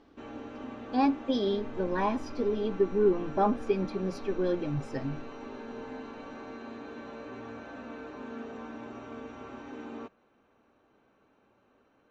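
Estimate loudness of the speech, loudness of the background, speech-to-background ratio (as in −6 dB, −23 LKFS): −30.0 LKFS, −43.0 LKFS, 13.0 dB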